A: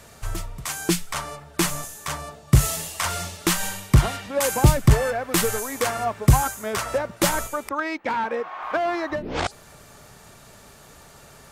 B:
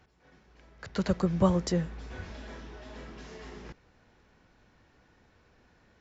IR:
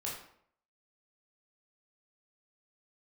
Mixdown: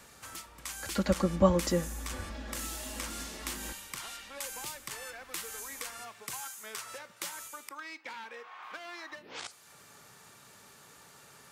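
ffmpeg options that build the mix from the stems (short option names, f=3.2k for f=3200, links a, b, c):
-filter_complex "[0:a]highpass=120,equalizer=f=650:t=o:w=0.44:g=-7.5,acrossover=split=530|2200|5400[a][b][c][d];[a]acompressor=threshold=-57dB:ratio=4[e];[b]acompressor=threshold=-43dB:ratio=4[f];[c]acompressor=threshold=-40dB:ratio=4[g];[d]acompressor=threshold=-36dB:ratio=4[h];[e][f][g][h]amix=inputs=4:normalize=0,volume=-6.5dB,asplit=2[i][j];[j]volume=-15dB[k];[1:a]aecho=1:1:3.6:0.77,volume=-1dB[l];[2:a]atrim=start_sample=2205[m];[k][m]afir=irnorm=-1:irlink=0[n];[i][l][n]amix=inputs=3:normalize=0"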